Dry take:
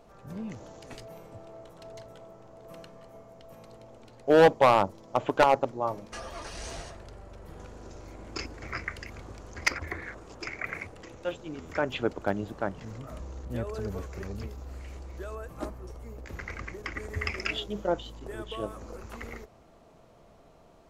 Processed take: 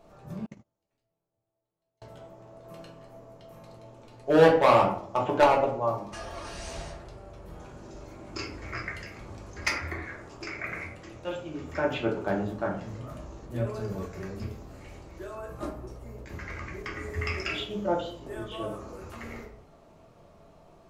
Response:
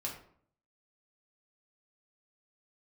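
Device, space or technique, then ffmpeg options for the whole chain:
bathroom: -filter_complex "[1:a]atrim=start_sample=2205[a];[0:a][a]afir=irnorm=-1:irlink=0,asettb=1/sr,asplit=3[b][c][d];[b]atrim=end=0.464[e];[c]atrim=start=0.46:end=2.02,asetpts=PTS-STARTPTS,afade=t=in:d=0.004:c=qsin,afade=t=out:st=1.556:d=0.004:c=qsin,agate=range=-39dB:threshold=-34dB:ratio=16:detection=peak[f];[d]atrim=start=2.016[g];[e][f]acrossfade=d=0.004:c1=hsin:c2=qsin[h];[h][g]acrossfade=d=0.004:c1=qsin:c2=hsin"

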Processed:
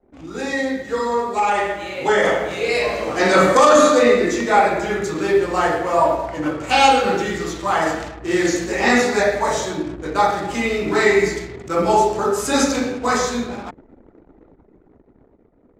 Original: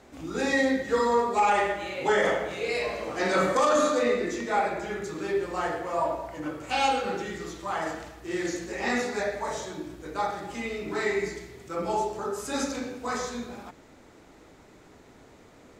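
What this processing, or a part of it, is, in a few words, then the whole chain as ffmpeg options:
voice memo with heavy noise removal: -af "anlmdn=0.01,dynaudnorm=f=930:g=5:m=11.5dB,volume=1.5dB"

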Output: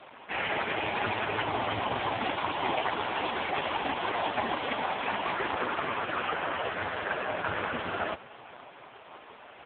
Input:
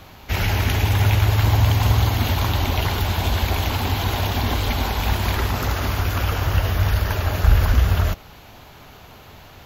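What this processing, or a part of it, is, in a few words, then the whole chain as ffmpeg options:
satellite phone: -filter_complex "[0:a]asettb=1/sr,asplit=3[a][b][c];[a]atrim=end=1.154[d];[b]atrim=start=1.15:end=1.77,asetpts=PTS-STARTPTS,afade=t=in:d=0.004:c=qsin,afade=t=out:st=0.616:d=0.004:c=qsin,bandreject=f=50:t=h:w=6,bandreject=f=100:t=h:w=6,bandreject=f=150:t=h:w=6,bandreject=f=200:t=h:w=6[e];[c]atrim=start=1.766[f];[d][e]acrossfade=d=0.004:c1=hsin:c2=qsin[g];[g][f]acrossfade=d=0.004:c1=qsin:c2=hsin,highpass=340,lowpass=3k,aecho=1:1:501:0.075,volume=3dB" -ar 8000 -c:a libopencore_amrnb -b:a 4750

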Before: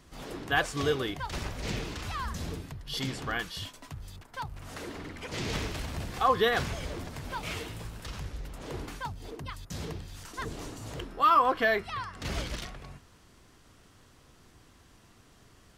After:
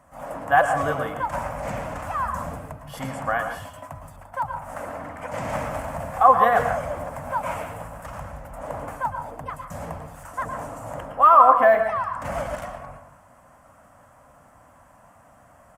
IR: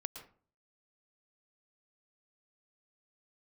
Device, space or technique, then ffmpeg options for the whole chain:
far-field microphone of a smart speaker: -filter_complex "[0:a]firequalizer=gain_entry='entry(270,0);entry(390,-16);entry(560,13);entry(3900,-19);entry(7900,0)':delay=0.05:min_phase=1[a];[1:a]atrim=start_sample=2205[b];[a][b]afir=irnorm=-1:irlink=0,highpass=f=80:p=1,dynaudnorm=f=140:g=3:m=3.5dB,volume=2dB" -ar 48000 -c:a libopus -b:a 48k

